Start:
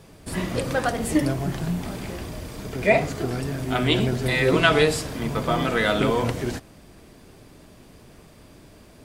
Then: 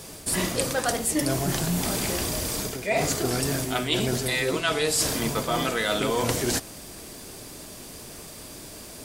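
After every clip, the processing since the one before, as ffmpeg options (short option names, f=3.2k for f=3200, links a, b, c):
-af "bass=f=250:g=-5,treble=f=4k:g=12,areverse,acompressor=threshold=-28dB:ratio=10,areverse,volume=6.5dB"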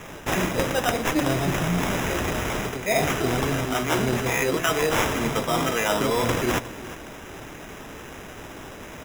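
-filter_complex "[0:a]acrossover=split=290[a][b];[b]acrusher=samples=10:mix=1:aa=0.000001[c];[a][c]amix=inputs=2:normalize=0,aecho=1:1:359:0.168,volume=2dB"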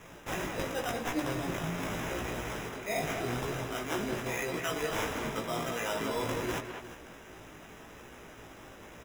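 -filter_complex "[0:a]flanger=delay=16.5:depth=2.7:speed=0.87,asplit=2[a][b];[b]adelay=200,highpass=300,lowpass=3.4k,asoftclip=type=hard:threshold=-21dB,volume=-6dB[c];[a][c]amix=inputs=2:normalize=0,volume=-8dB"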